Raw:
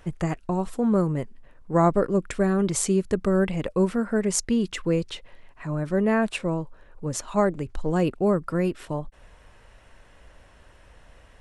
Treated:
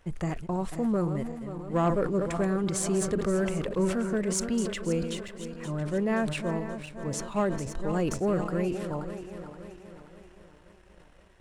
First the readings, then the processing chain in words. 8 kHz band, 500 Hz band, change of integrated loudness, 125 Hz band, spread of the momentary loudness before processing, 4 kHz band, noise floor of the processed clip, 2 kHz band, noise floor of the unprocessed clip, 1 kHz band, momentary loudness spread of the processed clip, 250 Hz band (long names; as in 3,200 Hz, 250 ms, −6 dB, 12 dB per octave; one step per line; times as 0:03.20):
−3.5 dB, −4.5 dB, −4.5 dB, −4.0 dB, 11 LU, −3.0 dB, −56 dBFS, −3.5 dB, −54 dBFS, −5.0 dB, 11 LU, −4.5 dB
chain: feedback delay that plays each chunk backwards 264 ms, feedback 71%, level −10.5 dB
leveller curve on the samples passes 1
level that may fall only so fast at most 64 dB per second
level −8.5 dB